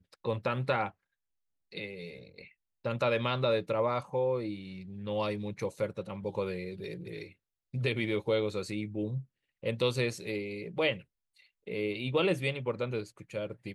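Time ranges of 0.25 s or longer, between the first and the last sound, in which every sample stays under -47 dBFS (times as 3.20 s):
0.90–1.72 s
2.47–2.85 s
7.31–7.74 s
9.23–9.63 s
11.02–11.67 s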